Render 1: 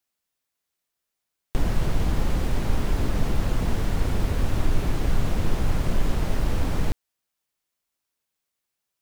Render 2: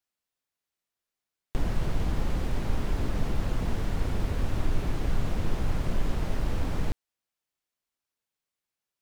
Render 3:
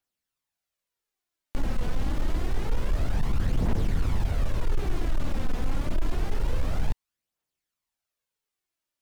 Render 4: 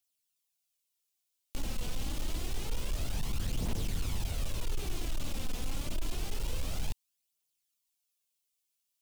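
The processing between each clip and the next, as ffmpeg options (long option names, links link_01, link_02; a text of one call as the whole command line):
ffmpeg -i in.wav -af "highshelf=frequency=7400:gain=-5,volume=-4.5dB" out.wav
ffmpeg -i in.wav -af "asoftclip=type=hard:threshold=-22dB,aphaser=in_gain=1:out_gain=1:delay=4.1:decay=0.44:speed=0.27:type=triangular" out.wav
ffmpeg -i in.wav -af "aexciter=amount=4.2:drive=3.6:freq=2500,volume=-8.5dB" out.wav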